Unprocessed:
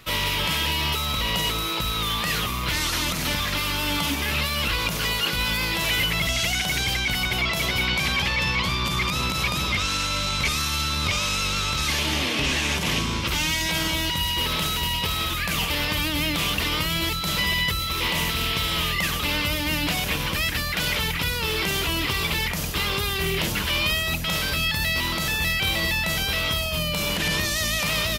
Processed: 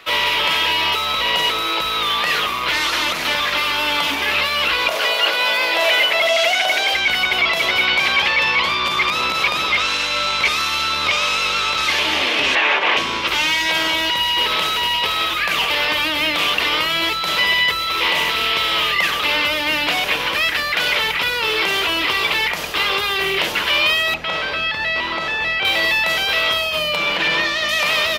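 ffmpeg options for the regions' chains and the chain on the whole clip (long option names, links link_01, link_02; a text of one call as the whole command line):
ffmpeg -i in.wav -filter_complex "[0:a]asettb=1/sr,asplit=3[link_01][link_02][link_03];[link_01]atrim=end=4.884[link_04];[link_02]atrim=start=4.88:end=6.94,asetpts=PTS-STARTPTS,afade=type=in:duration=0.004:curve=qsin,afade=type=out:start_time=2.056:duration=0.004:curve=qsin,highpass=300,equalizer=frequency=640:width=3.6:gain=11.5,volume=17dB,asoftclip=hard,volume=-17dB[link_05];[link_03]atrim=start=6.936[link_06];[link_04][link_05]acrossfade=duration=0.004:curve1=hsin:curve2=qsin[link_07];[link_07][link_06]acrossfade=duration=0.004:curve1=qsin:curve2=hsin,asettb=1/sr,asplit=3[link_08][link_09][link_10];[link_08]atrim=end=12.554[link_11];[link_09]atrim=start=12.55:end=12.97,asetpts=PTS-STARTPTS,afade=type=in:duration=0.004:curve=qsin,afade=type=out:start_time=0.416:duration=0.004:curve=qsin,highpass=420,lowpass=2400,acontrast=32[link_12];[link_10]atrim=start=12.966[link_13];[link_11][link_12]acrossfade=duration=0.004:curve1=hsin:curve2=qsin[link_14];[link_14][link_13]acrossfade=duration=0.004:curve1=qsin:curve2=hsin,asettb=1/sr,asplit=3[link_15][link_16][link_17];[link_15]atrim=end=24.144[link_18];[link_16]atrim=start=24.14:end=25.65,asetpts=PTS-STARTPTS,afade=type=in:duration=0.004:curve=qsin,afade=type=out:start_time=1.506:duration=0.004:curve=qsin,aemphasis=mode=reproduction:type=75kf,acrossover=split=8800[link_19][link_20];[link_20]acompressor=threshold=-57dB:ratio=4:attack=1:release=60[link_21];[link_19][link_21]amix=inputs=2:normalize=0[link_22];[link_17]atrim=start=25.646[link_23];[link_18][link_22]acrossfade=duration=0.004:curve1=hsin:curve2=qsin[link_24];[link_24][link_23]acrossfade=duration=0.004:curve1=qsin:curve2=hsin,asettb=1/sr,asplit=3[link_25][link_26][link_27];[link_25]atrim=end=26.964[link_28];[link_26]atrim=start=26.96:end=27.69,asetpts=PTS-STARTPTS,afade=type=in:duration=0.004:curve=qsin,afade=type=out:start_time=0.726:duration=0.004:curve=qsin,acrossover=split=5100[link_29][link_30];[link_30]acompressor=threshold=-46dB:ratio=4:attack=1:release=60[link_31];[link_29][link_31]amix=inputs=2:normalize=0,aecho=1:1:6:0.37,atrim=end_sample=32193,aeval=exprs='val(0)+0.00355*sin(2*PI*1400*n/s)':channel_layout=same[link_32];[link_27]atrim=start=27.686[link_33];[link_28][link_32]acrossfade=duration=0.004:curve1=hsin:curve2=qsin[link_34];[link_34][link_33]acrossfade=duration=0.004:curve1=qsin:curve2=hsin,acrossover=split=360 4200:gain=0.0891 1 0.224[link_35][link_36][link_37];[link_35][link_36][link_37]amix=inputs=3:normalize=0,bandreject=frequency=57.96:width_type=h:width=4,bandreject=frequency=115.92:width_type=h:width=4,bandreject=frequency=173.88:width_type=h:width=4,bandreject=frequency=231.84:width_type=h:width=4,bandreject=frequency=289.8:width_type=h:width=4,bandreject=frequency=347.76:width_type=h:width=4,bandreject=frequency=405.72:width_type=h:width=4,bandreject=frequency=463.68:width_type=h:width=4,bandreject=frequency=521.64:width_type=h:width=4,bandreject=frequency=579.6:width_type=h:width=4,bandreject=frequency=637.56:width_type=h:width=4,bandreject=frequency=695.52:width_type=h:width=4,bandreject=frequency=753.48:width_type=h:width=4,bandreject=frequency=811.44:width_type=h:width=4,bandreject=frequency=869.4:width_type=h:width=4,bandreject=frequency=927.36:width_type=h:width=4,bandreject=frequency=985.32:width_type=h:width=4,bandreject=frequency=1043.28:width_type=h:width=4,bandreject=frequency=1101.24:width_type=h:width=4,bandreject=frequency=1159.2:width_type=h:width=4,bandreject=frequency=1217.16:width_type=h:width=4,bandreject=frequency=1275.12:width_type=h:width=4,bandreject=frequency=1333.08:width_type=h:width=4,bandreject=frequency=1391.04:width_type=h:width=4,bandreject=frequency=1449:width_type=h:width=4,bandreject=frequency=1506.96:width_type=h:width=4,bandreject=frequency=1564.92:width_type=h:width=4,bandreject=frequency=1622.88:width_type=h:width=4,bandreject=frequency=1680.84:width_type=h:width=4,bandreject=frequency=1738.8:width_type=h:width=4,bandreject=frequency=1796.76:width_type=h:width=4,bandreject=frequency=1854.72:width_type=h:width=4,bandreject=frequency=1912.68:width_type=h:width=4,bandreject=frequency=1970.64:width_type=h:width=4,bandreject=frequency=2028.6:width_type=h:width=4,volume=9dB" out.wav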